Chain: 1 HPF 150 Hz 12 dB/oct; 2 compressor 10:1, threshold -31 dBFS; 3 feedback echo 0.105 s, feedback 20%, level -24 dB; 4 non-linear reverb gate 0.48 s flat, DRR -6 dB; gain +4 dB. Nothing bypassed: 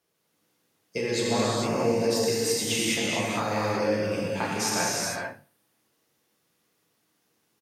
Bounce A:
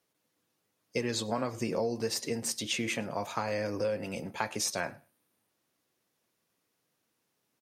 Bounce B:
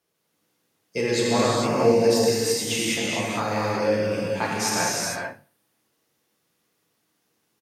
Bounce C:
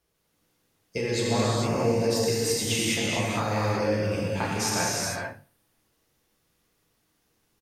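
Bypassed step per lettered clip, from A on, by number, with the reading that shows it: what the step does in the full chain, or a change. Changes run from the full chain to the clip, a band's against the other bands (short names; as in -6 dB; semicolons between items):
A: 4, crest factor change +3.0 dB; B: 2, mean gain reduction 2.0 dB; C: 1, 125 Hz band +5.5 dB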